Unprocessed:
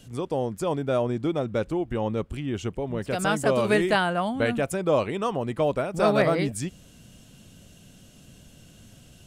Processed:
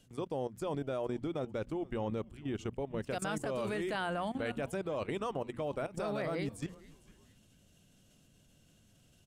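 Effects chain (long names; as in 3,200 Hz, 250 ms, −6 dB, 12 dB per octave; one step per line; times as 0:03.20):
mains-hum notches 60/120/180/240 Hz
output level in coarse steps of 15 dB
echo with shifted repeats 452 ms, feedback 32%, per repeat −130 Hz, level −21 dB
level −5 dB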